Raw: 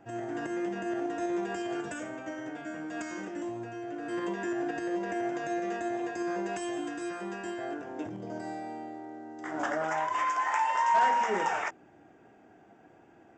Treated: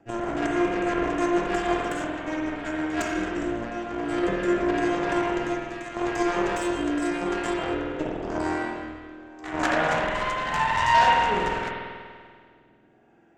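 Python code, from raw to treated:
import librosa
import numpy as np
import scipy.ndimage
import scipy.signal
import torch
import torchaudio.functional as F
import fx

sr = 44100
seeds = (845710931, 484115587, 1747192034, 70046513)

y = fx.highpass(x, sr, hz=1200.0, slope=6, at=(5.55, 5.95), fade=0.02)
y = fx.rider(y, sr, range_db=4, speed_s=2.0)
y = fx.cheby_harmonics(y, sr, harmonics=(3, 4, 7, 8), levels_db=(-25, -20, -23, -30), full_scale_db=-17.5)
y = fx.rotary_switch(y, sr, hz=6.3, then_hz=0.85, switch_at_s=2.71)
y = fx.rev_spring(y, sr, rt60_s=1.9, pass_ms=(48,), chirp_ms=70, drr_db=-2.0)
y = y * 10.0 ** (8.5 / 20.0)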